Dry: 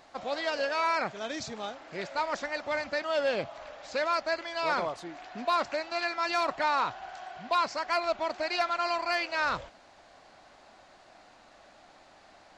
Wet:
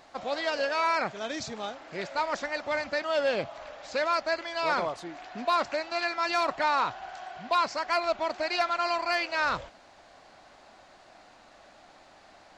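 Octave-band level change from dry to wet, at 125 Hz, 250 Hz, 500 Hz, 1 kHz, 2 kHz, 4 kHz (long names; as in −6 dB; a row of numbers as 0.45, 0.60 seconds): +1.5, +1.5, +1.5, +1.5, +1.5, +1.5 decibels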